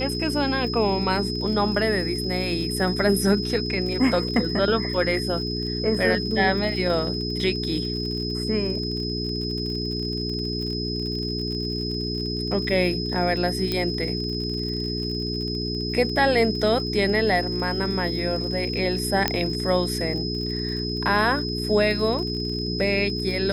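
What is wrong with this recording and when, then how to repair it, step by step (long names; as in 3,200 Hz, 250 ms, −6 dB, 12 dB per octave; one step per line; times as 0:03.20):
surface crackle 47 per second −32 dBFS
mains hum 60 Hz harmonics 7 −29 dBFS
whistle 5,100 Hz −30 dBFS
0:13.72: click −11 dBFS
0:19.28: click −5 dBFS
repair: click removal
notch filter 5,100 Hz, Q 30
hum removal 60 Hz, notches 7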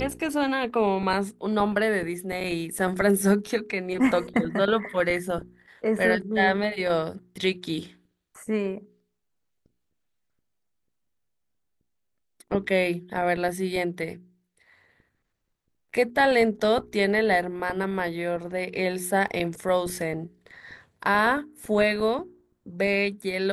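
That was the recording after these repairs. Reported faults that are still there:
0:19.28: click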